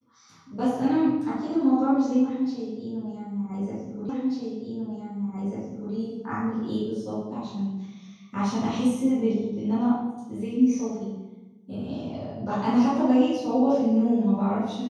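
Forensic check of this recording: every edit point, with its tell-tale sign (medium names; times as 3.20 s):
4.09 s: repeat of the last 1.84 s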